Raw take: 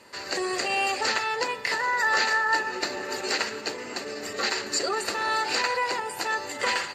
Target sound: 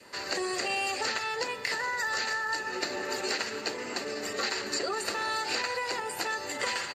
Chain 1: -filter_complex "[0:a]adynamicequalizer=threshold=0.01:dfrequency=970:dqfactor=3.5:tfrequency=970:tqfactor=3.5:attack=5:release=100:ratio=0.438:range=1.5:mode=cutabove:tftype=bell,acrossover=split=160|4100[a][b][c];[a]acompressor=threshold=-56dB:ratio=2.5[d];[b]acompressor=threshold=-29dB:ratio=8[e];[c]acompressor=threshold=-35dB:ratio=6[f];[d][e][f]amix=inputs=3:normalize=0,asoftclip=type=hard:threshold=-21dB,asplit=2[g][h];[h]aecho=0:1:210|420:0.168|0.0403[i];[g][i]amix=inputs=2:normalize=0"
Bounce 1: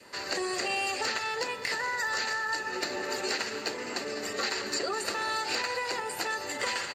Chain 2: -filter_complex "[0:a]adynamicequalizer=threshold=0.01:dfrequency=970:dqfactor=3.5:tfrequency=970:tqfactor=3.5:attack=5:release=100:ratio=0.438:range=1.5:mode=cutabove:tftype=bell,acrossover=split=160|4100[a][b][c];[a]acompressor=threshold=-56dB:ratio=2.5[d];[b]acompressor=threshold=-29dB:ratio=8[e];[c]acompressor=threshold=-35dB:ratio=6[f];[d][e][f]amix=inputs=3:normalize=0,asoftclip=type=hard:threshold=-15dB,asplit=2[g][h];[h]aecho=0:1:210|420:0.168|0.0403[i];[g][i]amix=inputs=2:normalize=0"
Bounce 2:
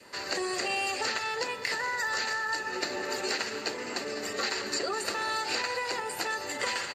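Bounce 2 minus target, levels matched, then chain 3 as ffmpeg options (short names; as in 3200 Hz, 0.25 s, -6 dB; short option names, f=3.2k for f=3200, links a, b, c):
echo-to-direct +9 dB
-filter_complex "[0:a]adynamicequalizer=threshold=0.01:dfrequency=970:dqfactor=3.5:tfrequency=970:tqfactor=3.5:attack=5:release=100:ratio=0.438:range=1.5:mode=cutabove:tftype=bell,acrossover=split=160|4100[a][b][c];[a]acompressor=threshold=-56dB:ratio=2.5[d];[b]acompressor=threshold=-29dB:ratio=8[e];[c]acompressor=threshold=-35dB:ratio=6[f];[d][e][f]amix=inputs=3:normalize=0,asoftclip=type=hard:threshold=-15dB,asplit=2[g][h];[h]aecho=0:1:210|420:0.0596|0.0143[i];[g][i]amix=inputs=2:normalize=0"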